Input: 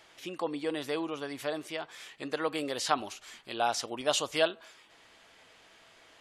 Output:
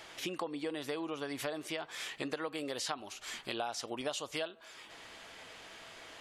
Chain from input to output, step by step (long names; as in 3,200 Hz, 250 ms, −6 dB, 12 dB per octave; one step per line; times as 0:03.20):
downward compressor 8 to 1, threshold −42 dBFS, peak gain reduction 20.5 dB
level +7 dB